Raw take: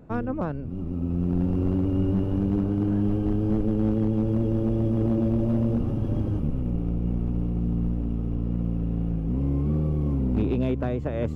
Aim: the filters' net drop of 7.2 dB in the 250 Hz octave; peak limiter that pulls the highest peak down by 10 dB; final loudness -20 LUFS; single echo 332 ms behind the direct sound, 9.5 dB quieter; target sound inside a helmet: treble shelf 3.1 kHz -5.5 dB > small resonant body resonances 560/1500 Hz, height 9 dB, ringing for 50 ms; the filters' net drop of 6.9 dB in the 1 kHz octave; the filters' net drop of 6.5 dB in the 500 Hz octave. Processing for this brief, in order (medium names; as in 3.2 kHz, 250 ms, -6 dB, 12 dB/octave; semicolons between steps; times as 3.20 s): peaking EQ 250 Hz -8.5 dB; peaking EQ 500 Hz -3.5 dB; peaking EQ 1 kHz -7 dB; peak limiter -26.5 dBFS; treble shelf 3.1 kHz -5.5 dB; delay 332 ms -9.5 dB; small resonant body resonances 560/1500 Hz, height 9 dB, ringing for 50 ms; trim +14.5 dB